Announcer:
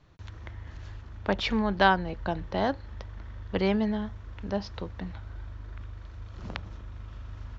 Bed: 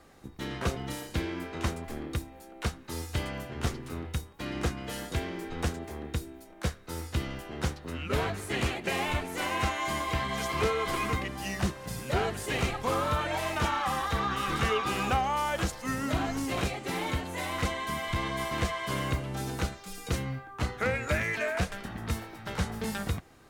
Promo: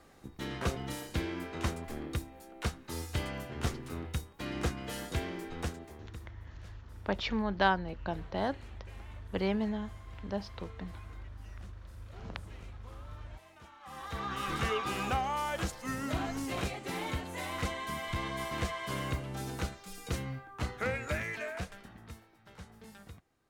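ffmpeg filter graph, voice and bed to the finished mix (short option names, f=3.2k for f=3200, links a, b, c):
-filter_complex "[0:a]adelay=5800,volume=-5.5dB[a];[1:a]volume=19dB,afade=t=out:st=5.32:d=0.99:silence=0.0668344,afade=t=in:st=13.8:d=0.65:silence=0.0841395,afade=t=out:st=20.9:d=1.32:silence=0.188365[b];[a][b]amix=inputs=2:normalize=0"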